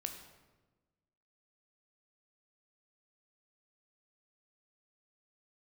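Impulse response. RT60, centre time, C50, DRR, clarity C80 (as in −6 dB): 1.2 s, 24 ms, 7.5 dB, 4.5 dB, 9.5 dB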